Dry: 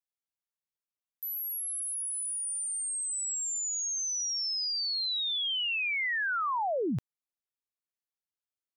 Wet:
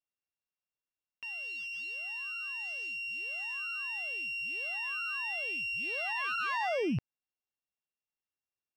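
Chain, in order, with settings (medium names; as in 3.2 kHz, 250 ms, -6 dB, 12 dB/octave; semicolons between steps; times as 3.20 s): sorted samples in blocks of 16 samples; distance through air 210 m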